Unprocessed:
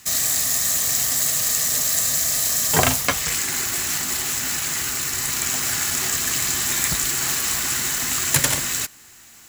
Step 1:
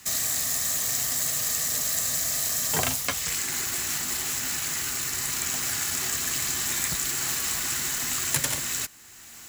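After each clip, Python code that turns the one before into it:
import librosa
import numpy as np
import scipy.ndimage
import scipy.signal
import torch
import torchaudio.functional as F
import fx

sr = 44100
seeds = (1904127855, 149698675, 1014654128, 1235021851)

y = fx.band_squash(x, sr, depth_pct=40)
y = F.gain(torch.from_numpy(y), -6.0).numpy()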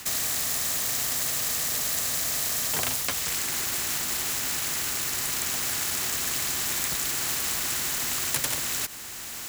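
y = fx.spectral_comp(x, sr, ratio=2.0)
y = F.gain(torch.from_numpy(y), -2.0).numpy()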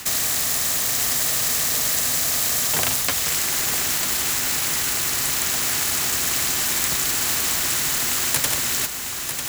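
y = x + 10.0 ** (-8.0 / 20.0) * np.pad(x, (int(947 * sr / 1000.0), 0))[:len(x)]
y = F.gain(torch.from_numpy(y), 5.5).numpy()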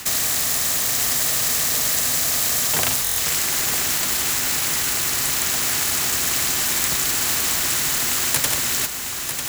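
y = fx.buffer_glitch(x, sr, at_s=(3.03,), block=1024, repeats=5)
y = F.gain(torch.from_numpy(y), 1.0).numpy()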